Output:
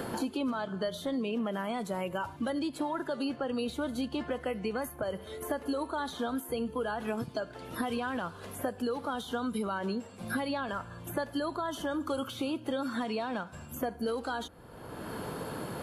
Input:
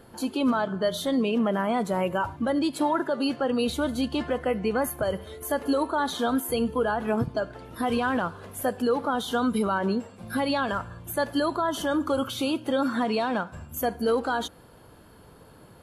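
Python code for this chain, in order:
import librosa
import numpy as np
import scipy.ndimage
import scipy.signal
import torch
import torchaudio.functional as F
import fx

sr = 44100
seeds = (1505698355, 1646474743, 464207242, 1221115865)

y = fx.band_squash(x, sr, depth_pct=100)
y = y * librosa.db_to_amplitude(-8.5)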